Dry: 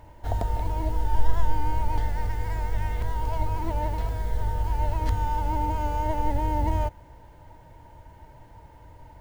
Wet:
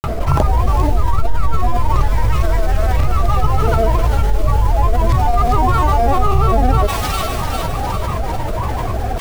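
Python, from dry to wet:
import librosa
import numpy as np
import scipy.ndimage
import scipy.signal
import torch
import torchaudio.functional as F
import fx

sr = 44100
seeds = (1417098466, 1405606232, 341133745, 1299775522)

y = fx.granulator(x, sr, seeds[0], grain_ms=100.0, per_s=20.0, spray_ms=36.0, spread_st=7)
y = fx.echo_wet_highpass(y, sr, ms=400, feedback_pct=51, hz=3000.0, wet_db=-3.0)
y = fx.env_flatten(y, sr, amount_pct=70)
y = y * librosa.db_to_amplitude(3.5)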